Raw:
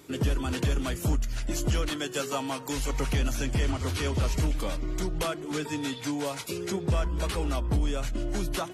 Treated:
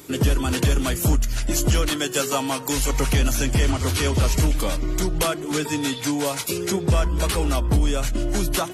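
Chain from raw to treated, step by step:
high-shelf EQ 7,700 Hz +9 dB
level +7 dB

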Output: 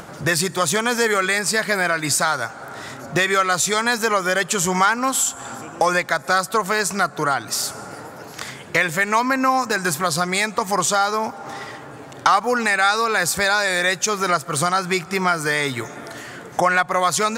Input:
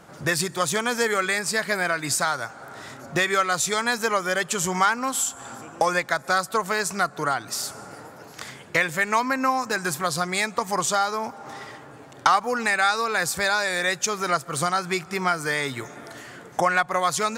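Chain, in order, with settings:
in parallel at −0.5 dB: brickwall limiter −16 dBFS, peak gain reduction 10.5 dB
on the sum: upward compression, threshold −33 dBFS

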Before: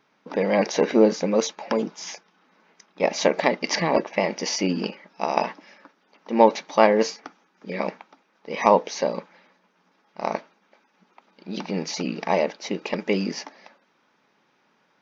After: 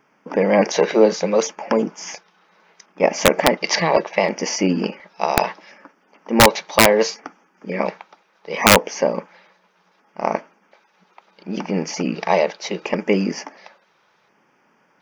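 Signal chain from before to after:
auto-filter notch square 0.7 Hz 260–3,900 Hz
wrap-around overflow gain 6.5 dB
level +5.5 dB

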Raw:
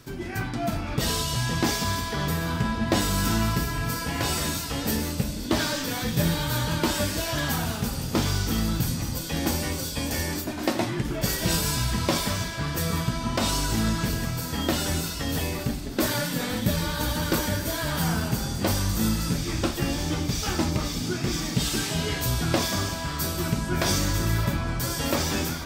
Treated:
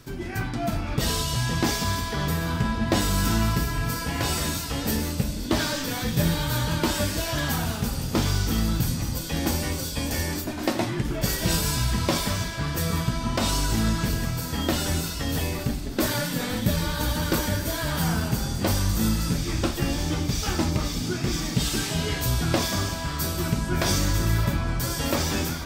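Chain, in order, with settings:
low-shelf EQ 68 Hz +5.5 dB

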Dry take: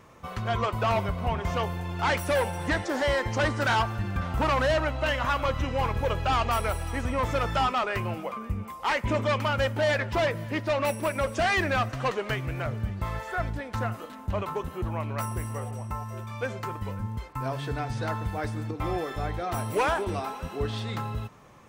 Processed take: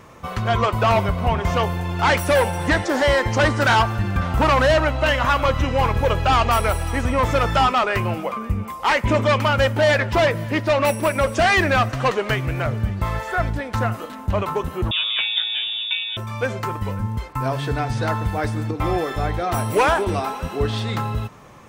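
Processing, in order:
0:14.91–0:16.17: voice inversion scrambler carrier 3,600 Hz
level +8 dB

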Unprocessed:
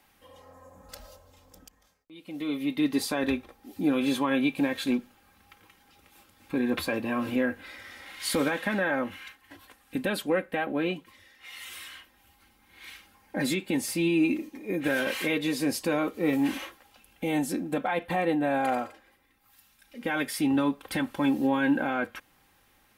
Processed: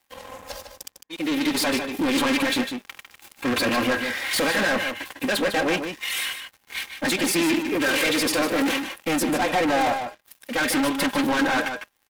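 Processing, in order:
low-shelf EQ 350 Hz −12 dB
notch filter 1,300 Hz, Q 13
hum removal 203.7 Hz, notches 20
leveller curve on the samples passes 5
tempo change 1.9×
slap from a distant wall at 26 metres, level −7 dB
highs frequency-modulated by the lows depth 0.19 ms

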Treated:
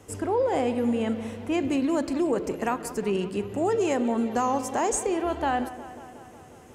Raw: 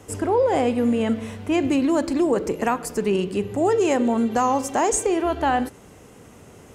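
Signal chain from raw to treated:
delay with a low-pass on its return 181 ms, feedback 70%, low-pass 3,100 Hz, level −15 dB
level −5 dB

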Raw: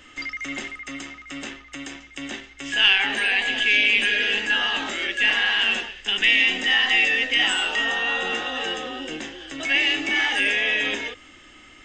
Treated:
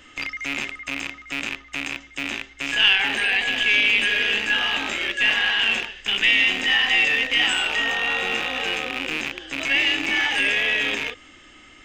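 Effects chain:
loose part that buzzes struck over −45 dBFS, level −14 dBFS

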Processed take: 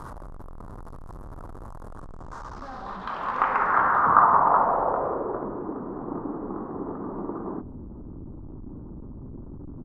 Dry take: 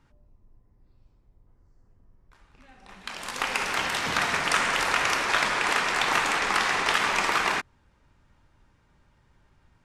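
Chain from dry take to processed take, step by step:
converter with a step at zero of −34 dBFS
high shelf with overshoot 1,700 Hz −13.5 dB, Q 3
on a send: single-tap delay 79 ms −24 dB
on the sum: low-pass filter sweep 11,000 Hz → 300 Hz, 0:01.81–0:05.67

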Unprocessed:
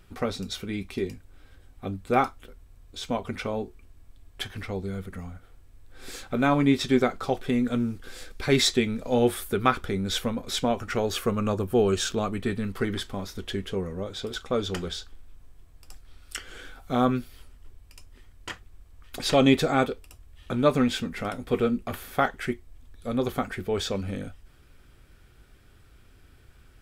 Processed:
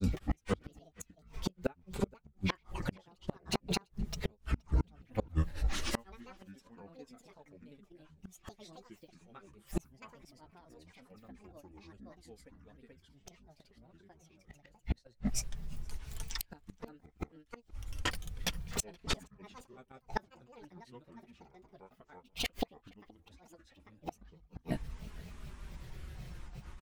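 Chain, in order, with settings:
parametric band 86 Hz +9.5 dB 0.76 octaves
granular cloud 123 ms, grains 27 per second, spray 520 ms, pitch spread up and down by 12 semitones
flanger 0.17 Hz, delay 3.5 ms, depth 2.2 ms, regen −33%
gate with flip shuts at −31 dBFS, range −36 dB
slap from a distant wall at 81 metres, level −25 dB
level +12 dB

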